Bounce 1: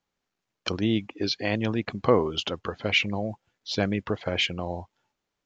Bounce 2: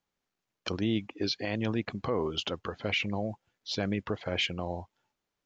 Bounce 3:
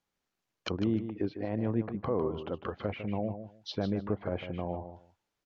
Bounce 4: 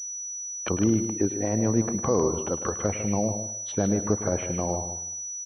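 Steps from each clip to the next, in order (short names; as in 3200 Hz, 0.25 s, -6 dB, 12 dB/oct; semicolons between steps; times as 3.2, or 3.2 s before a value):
limiter -16 dBFS, peak gain reduction 9.5 dB; gain -3 dB
treble ducked by the level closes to 1000 Hz, closed at -30 dBFS; feedback echo 0.152 s, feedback 17%, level -10 dB
feedback echo 0.105 s, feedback 39%, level -13.5 dB; pulse-width modulation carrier 5900 Hz; gain +7 dB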